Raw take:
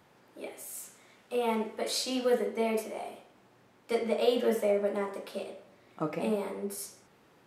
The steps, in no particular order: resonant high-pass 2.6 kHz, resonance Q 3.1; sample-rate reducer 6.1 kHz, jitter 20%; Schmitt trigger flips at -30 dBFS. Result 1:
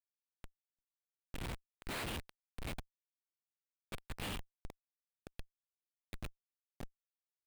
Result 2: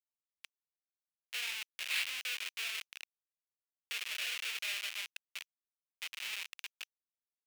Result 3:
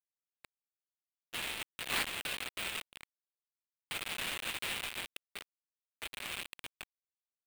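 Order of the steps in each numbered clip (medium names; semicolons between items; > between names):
resonant high-pass > Schmitt trigger > sample-rate reducer; Schmitt trigger > sample-rate reducer > resonant high-pass; Schmitt trigger > resonant high-pass > sample-rate reducer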